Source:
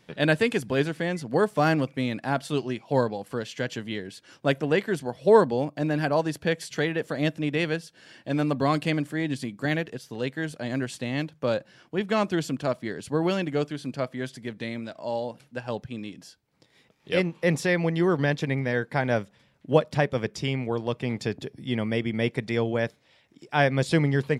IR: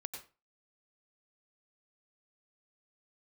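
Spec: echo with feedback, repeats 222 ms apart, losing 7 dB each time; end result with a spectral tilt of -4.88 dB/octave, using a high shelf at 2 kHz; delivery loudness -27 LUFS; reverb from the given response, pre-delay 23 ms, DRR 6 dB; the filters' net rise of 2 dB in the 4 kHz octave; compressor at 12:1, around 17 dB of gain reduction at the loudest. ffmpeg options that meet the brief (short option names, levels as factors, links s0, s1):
-filter_complex "[0:a]highshelf=f=2000:g=-5.5,equalizer=f=4000:t=o:g=8,acompressor=threshold=0.0316:ratio=12,aecho=1:1:222|444|666|888|1110:0.447|0.201|0.0905|0.0407|0.0183,asplit=2[s0][s1];[1:a]atrim=start_sample=2205,adelay=23[s2];[s1][s2]afir=irnorm=-1:irlink=0,volume=0.631[s3];[s0][s3]amix=inputs=2:normalize=0,volume=2.37"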